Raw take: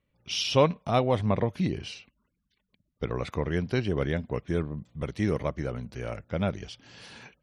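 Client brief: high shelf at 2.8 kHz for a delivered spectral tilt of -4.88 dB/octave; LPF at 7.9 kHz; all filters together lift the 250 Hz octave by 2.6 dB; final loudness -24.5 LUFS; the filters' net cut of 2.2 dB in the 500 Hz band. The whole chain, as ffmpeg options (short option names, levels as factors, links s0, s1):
-af "lowpass=7900,equalizer=f=250:t=o:g=4.5,equalizer=f=500:t=o:g=-4,highshelf=f=2800:g=6.5,volume=1.58"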